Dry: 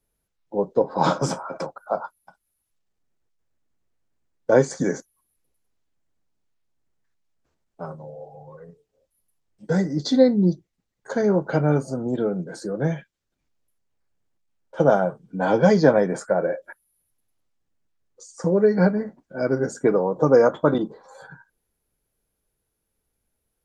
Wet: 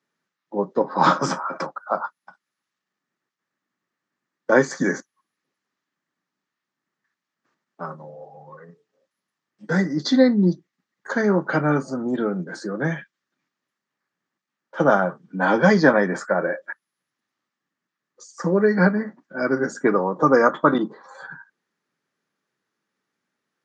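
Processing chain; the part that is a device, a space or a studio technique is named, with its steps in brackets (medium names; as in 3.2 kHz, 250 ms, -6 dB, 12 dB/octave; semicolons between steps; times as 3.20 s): television speaker (cabinet simulation 170–6700 Hz, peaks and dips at 470 Hz -6 dB, 680 Hz -4 dB, 1.2 kHz +8 dB, 1.8 kHz +9 dB); trim +2.5 dB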